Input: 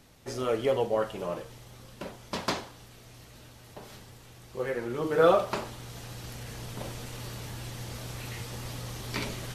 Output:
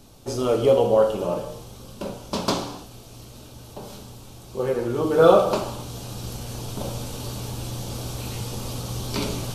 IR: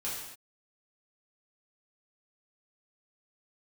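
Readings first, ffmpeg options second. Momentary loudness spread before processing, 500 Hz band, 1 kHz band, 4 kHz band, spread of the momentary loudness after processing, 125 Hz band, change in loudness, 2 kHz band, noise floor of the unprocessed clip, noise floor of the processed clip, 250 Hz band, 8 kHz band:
22 LU, +8.0 dB, +6.0 dB, +6.5 dB, 24 LU, +8.0 dB, +7.5 dB, +0.5 dB, −52 dBFS, −44 dBFS, +8.5 dB, +8.0 dB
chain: -filter_complex "[0:a]equalizer=frequency=1900:width_type=o:width=0.67:gain=-14,asplit=2[link_01][link_02];[1:a]atrim=start_sample=2205,lowshelf=frequency=330:gain=4[link_03];[link_02][link_03]afir=irnorm=-1:irlink=0,volume=-6dB[link_04];[link_01][link_04]amix=inputs=2:normalize=0,volume=5dB"

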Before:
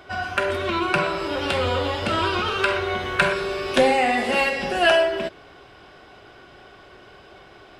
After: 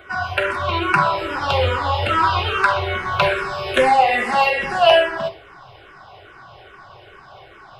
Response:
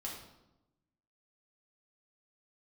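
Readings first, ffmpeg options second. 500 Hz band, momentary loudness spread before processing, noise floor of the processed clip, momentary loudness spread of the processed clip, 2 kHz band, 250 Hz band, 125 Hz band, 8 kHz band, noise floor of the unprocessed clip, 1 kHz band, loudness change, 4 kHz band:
+2.0 dB, 7 LU, −45 dBFS, 8 LU, +2.5 dB, −3.0 dB, +5.5 dB, −2.0 dB, −48 dBFS, +6.5 dB, +3.5 dB, +2.5 dB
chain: -filter_complex "[0:a]equalizer=frequency=125:width_type=o:width=1:gain=7,equalizer=frequency=250:width_type=o:width=1:gain=-10,equalizer=frequency=1000:width_type=o:width=1:gain=6,equalizer=frequency=8000:width_type=o:width=1:gain=-5,asplit=2[link_01][link_02];[1:a]atrim=start_sample=2205,afade=type=out:start_time=0.15:duration=0.01,atrim=end_sample=7056[link_03];[link_02][link_03]afir=irnorm=-1:irlink=0,volume=-3.5dB[link_04];[link_01][link_04]amix=inputs=2:normalize=0,asplit=2[link_05][link_06];[link_06]afreqshift=-2.4[link_07];[link_05][link_07]amix=inputs=2:normalize=1,volume=2dB"

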